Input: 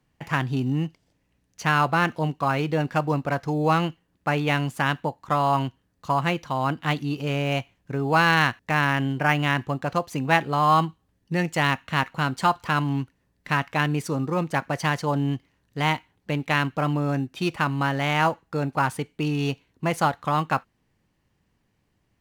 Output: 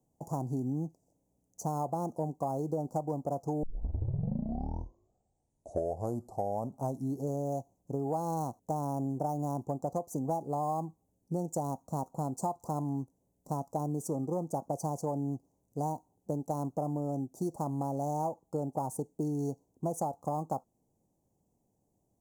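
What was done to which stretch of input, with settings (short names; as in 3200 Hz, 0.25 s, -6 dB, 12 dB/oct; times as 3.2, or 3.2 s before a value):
3.63 tape start 3.70 s
whole clip: elliptic band-stop 780–6700 Hz, stop band 50 dB; low shelf 150 Hz -11.5 dB; compressor 10:1, threshold -29 dBFS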